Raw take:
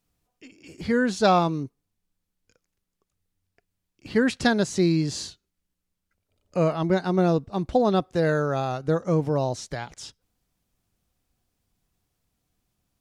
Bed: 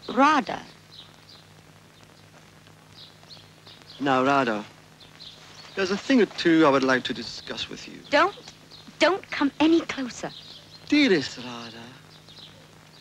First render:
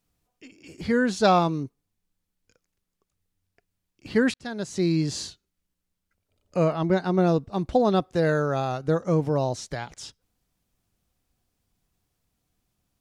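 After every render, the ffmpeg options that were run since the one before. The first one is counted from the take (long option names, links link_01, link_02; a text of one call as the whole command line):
ffmpeg -i in.wav -filter_complex "[0:a]asettb=1/sr,asplit=3[link_01][link_02][link_03];[link_01]atrim=end=6.654[link_04];[link_02]atrim=start=6.65:end=7.27,asetpts=PTS-STARTPTS,afade=type=in:duration=0.004:curve=qsin,afade=type=out:start_time=0.616:duration=0.004:curve=qsin,highshelf=frequency=5400:gain=-5.5[link_05];[link_03]atrim=start=7.266[link_06];[link_04][link_05]acrossfade=duration=0.004:curve1=hsin:curve2=qsin[link_07];[link_07][link_06]acrossfade=duration=0.004:curve1=qsin:curve2=hsin,asplit=2[link_08][link_09];[link_08]atrim=end=4.34,asetpts=PTS-STARTPTS,afade=type=out:start_time=4.336:duration=0.004:curve=hsin[link_10];[link_09]atrim=start=4.34,asetpts=PTS-STARTPTS,afade=type=in:duration=0.68[link_11];[link_10][link_11]concat=n=2:v=0:a=1" out.wav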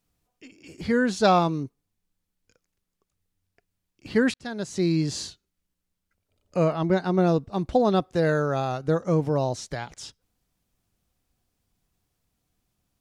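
ffmpeg -i in.wav -af anull out.wav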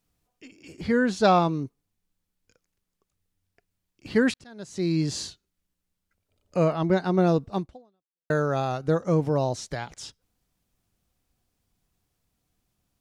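ffmpeg -i in.wav -filter_complex "[0:a]asettb=1/sr,asplit=3[link_01][link_02][link_03];[link_01]atrim=end=0.724[link_04];[link_02]atrim=start=0.72:end=1.63,asetpts=PTS-STARTPTS,afade=type=in:duration=0.004:curve=qsin,afade=type=out:start_time=0.906:duration=0.004:curve=qsin,highshelf=frequency=5100:gain=-5[link_05];[link_03]atrim=start=1.626[link_06];[link_04][link_05]acrossfade=duration=0.004:curve1=hsin:curve2=qsin[link_07];[link_07][link_06]acrossfade=duration=0.004:curve1=qsin:curve2=hsin,asplit=3[link_08][link_09][link_10];[link_08]atrim=end=4.44,asetpts=PTS-STARTPTS,afade=type=out:start_time=4.436:duration=0.004:curve=hsin:silence=0.141254[link_11];[link_09]atrim=start=4.44:end=8.3,asetpts=PTS-STARTPTS,afade=type=in:duration=0.6:silence=0.141254,afade=type=out:start_time=3.14:duration=0.72:curve=exp[link_12];[link_10]atrim=start=8.3,asetpts=PTS-STARTPTS,afade=type=in:duration=0.004:curve=hsin[link_13];[link_11][link_12][link_13]concat=n=3:v=0:a=1" out.wav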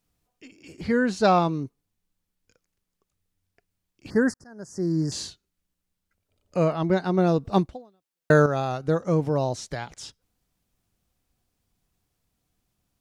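ffmpeg -i in.wav -filter_complex "[0:a]asettb=1/sr,asplit=3[link_01][link_02][link_03];[link_01]atrim=end=0.834[link_04];[link_02]atrim=start=0.83:end=1.38,asetpts=PTS-STARTPTS,afade=type=in:duration=0.004:curve=qsin,afade=type=out:start_time=0.546:duration=0.004:curve=qsin,bandreject=frequency=3400:width=9.6[link_05];[link_03]atrim=start=1.376[link_06];[link_04][link_05]acrossfade=duration=0.004:curve1=hsin:curve2=qsin[link_07];[link_07][link_06]acrossfade=duration=0.004:curve1=qsin:curve2=hsin,asettb=1/sr,asplit=3[link_08][link_09][link_10];[link_08]atrim=end=4.104[link_11];[link_09]atrim=start=4.1:end=5.12,asetpts=PTS-STARTPTS,afade=type=in:duration=0.004:curve=qsin,afade=type=out:start_time=1.016:duration=0.004:curve=qsin,asuperstop=centerf=3000:order=12:qfactor=0.99[link_12];[link_10]atrim=start=5.116[link_13];[link_11][link_12]acrossfade=duration=0.004:curve1=hsin:curve2=qsin[link_14];[link_14][link_13]acrossfade=duration=0.004:curve1=qsin:curve2=hsin,asplit=3[link_15][link_16][link_17];[link_15]atrim=end=7.452[link_18];[link_16]atrim=start=7.448:end=8.462,asetpts=PTS-STARTPTS,volume=7.5dB[link_19];[link_17]atrim=start=8.458[link_20];[link_18][link_19]acrossfade=duration=0.004:curve1=hsin:curve2=hsin[link_21];[link_21][link_20]acrossfade=duration=0.004:curve1=hsin:curve2=hsin" out.wav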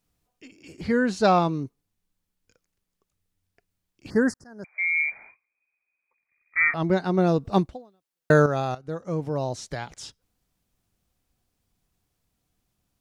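ffmpeg -i in.wav -filter_complex "[0:a]asettb=1/sr,asplit=3[link_01][link_02][link_03];[link_01]atrim=end=4.644[link_04];[link_02]atrim=start=4.64:end=6.74,asetpts=PTS-STARTPTS,afade=type=in:duration=0.004:curve=qsin,afade=type=out:start_time=2.096:duration=0.004:curve=qsin,lowpass=frequency=2100:width_type=q:width=0.5098,lowpass=frequency=2100:width_type=q:width=0.6013,lowpass=frequency=2100:width_type=q:width=0.9,lowpass=frequency=2100:width_type=q:width=2.563,afreqshift=-2500[link_05];[link_03]atrim=start=6.736[link_06];[link_04][link_05]acrossfade=duration=0.004:curve1=hsin:curve2=qsin[link_07];[link_07][link_06]acrossfade=duration=0.004:curve1=qsin:curve2=hsin,asplit=2[link_08][link_09];[link_08]atrim=end=8.75,asetpts=PTS-STARTPTS,afade=type=out:start_time=8.746:duration=0.004:curve=hsin:silence=0.223872[link_10];[link_09]atrim=start=8.75,asetpts=PTS-STARTPTS,afade=type=in:duration=1.06:silence=0.223872[link_11];[link_10][link_11]concat=n=2:v=0:a=1" out.wav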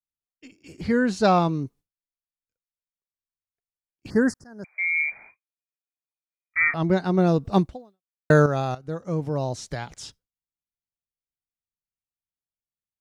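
ffmpeg -i in.wav -af "agate=range=-33dB:threshold=-46dB:ratio=3:detection=peak,bass=frequency=250:gain=3,treble=frequency=4000:gain=1" out.wav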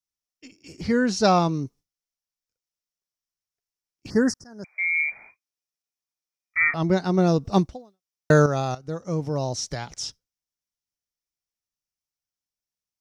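ffmpeg -i in.wav -af "equalizer=frequency=5600:width_type=o:width=0.45:gain=11.5,bandreject=frequency=1600:width=23" out.wav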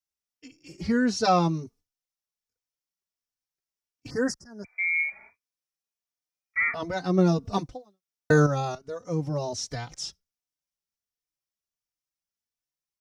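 ffmpeg -i in.wav -filter_complex "[0:a]asplit=2[link_01][link_02];[link_02]adelay=3.3,afreqshift=1.4[link_03];[link_01][link_03]amix=inputs=2:normalize=1" out.wav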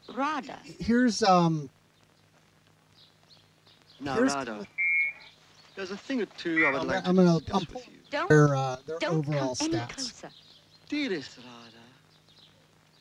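ffmpeg -i in.wav -i bed.wav -filter_complex "[1:a]volume=-11dB[link_01];[0:a][link_01]amix=inputs=2:normalize=0" out.wav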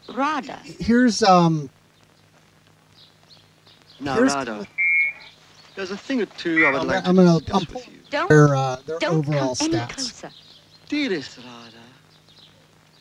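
ffmpeg -i in.wav -af "volume=7dB,alimiter=limit=-3dB:level=0:latency=1" out.wav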